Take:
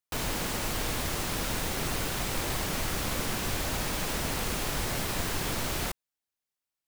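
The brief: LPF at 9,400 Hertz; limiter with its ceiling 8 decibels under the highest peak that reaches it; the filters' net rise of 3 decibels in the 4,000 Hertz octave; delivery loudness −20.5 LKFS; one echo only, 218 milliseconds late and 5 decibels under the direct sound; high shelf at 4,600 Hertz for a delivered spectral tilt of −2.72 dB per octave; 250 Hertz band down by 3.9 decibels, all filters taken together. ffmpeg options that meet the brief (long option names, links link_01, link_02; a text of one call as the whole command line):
ffmpeg -i in.wav -af "lowpass=9400,equalizer=frequency=250:width_type=o:gain=-5.5,equalizer=frequency=4000:width_type=o:gain=6.5,highshelf=frequency=4600:gain=-5,alimiter=level_in=2dB:limit=-24dB:level=0:latency=1,volume=-2dB,aecho=1:1:218:0.562,volume=13.5dB" out.wav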